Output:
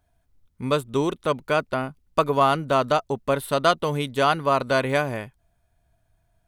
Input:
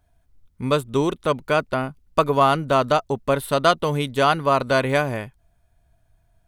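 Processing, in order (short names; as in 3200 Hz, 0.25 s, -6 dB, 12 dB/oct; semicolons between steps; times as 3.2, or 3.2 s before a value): low shelf 82 Hz -5 dB; gain -2 dB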